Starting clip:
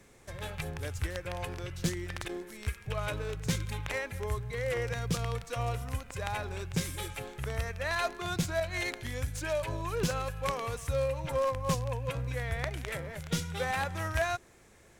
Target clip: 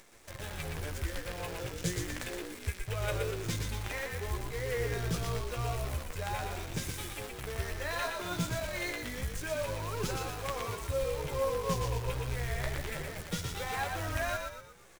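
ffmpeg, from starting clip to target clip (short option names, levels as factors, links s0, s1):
-filter_complex "[0:a]asettb=1/sr,asplit=3[s0][s1][s2];[s0]atrim=end=1.494[s3];[s1]atrim=start=1.49:end=3.31,asetpts=PTS-STARTPTS,afade=t=in:d=0.004:c=qsin,afade=t=out:st=1.816:d=0.004:c=qsin,equalizer=f=125:t=o:w=1:g=5,equalizer=f=250:t=o:w=1:g=-11,equalizer=f=500:t=o:w=1:g=9,equalizer=f=1000:t=o:w=1:g=-4,equalizer=f=2000:t=o:w=1:g=3,equalizer=f=8000:t=o:w=1:g=5[s4];[s2]atrim=start=3.306[s5];[s3][s4]acrossfade=d=0.004:c1=hsin:c2=qsin[s6];[s6][s5]acrossfade=d=0.004:c1=qsin:c2=hsin,acrossover=split=320[s7][s8];[s8]acompressor=mode=upward:threshold=0.00708:ratio=2.5[s9];[s7][s9]amix=inputs=2:normalize=0,flanger=delay=8.6:depth=8.9:regen=29:speed=0.29:shape=sinusoidal,acrusher=bits=8:dc=4:mix=0:aa=0.000001,asplit=6[s10][s11][s12][s13][s14][s15];[s11]adelay=119,afreqshift=-53,volume=0.631[s16];[s12]adelay=238,afreqshift=-106,volume=0.266[s17];[s13]adelay=357,afreqshift=-159,volume=0.111[s18];[s14]adelay=476,afreqshift=-212,volume=0.0468[s19];[s15]adelay=595,afreqshift=-265,volume=0.0197[s20];[s10][s16][s17][s18][s19][s20]amix=inputs=6:normalize=0"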